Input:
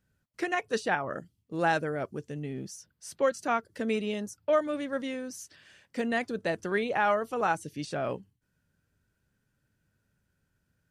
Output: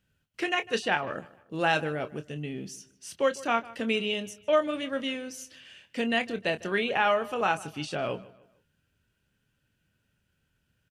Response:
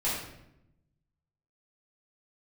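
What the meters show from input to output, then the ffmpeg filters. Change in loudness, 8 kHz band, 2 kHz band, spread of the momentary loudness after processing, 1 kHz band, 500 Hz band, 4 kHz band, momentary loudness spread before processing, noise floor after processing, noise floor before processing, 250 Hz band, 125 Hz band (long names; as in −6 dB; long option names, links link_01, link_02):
+2.0 dB, +1.0 dB, +3.0 dB, 14 LU, +1.0 dB, +1.0 dB, +9.0 dB, 13 LU, −76 dBFS, −78 dBFS, +0.5 dB, +0.5 dB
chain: -filter_complex "[0:a]equalizer=frequency=2900:width_type=o:width=0.58:gain=11.5,asplit=2[link_01][link_02];[link_02]adelay=26,volume=-10.5dB[link_03];[link_01][link_03]amix=inputs=2:normalize=0,asplit=2[link_04][link_05];[link_05]adelay=152,lowpass=frequency=4600:poles=1,volume=-19.5dB,asplit=2[link_06][link_07];[link_07]adelay=152,lowpass=frequency=4600:poles=1,volume=0.38,asplit=2[link_08][link_09];[link_09]adelay=152,lowpass=frequency=4600:poles=1,volume=0.38[link_10];[link_06][link_08][link_10]amix=inputs=3:normalize=0[link_11];[link_04][link_11]amix=inputs=2:normalize=0"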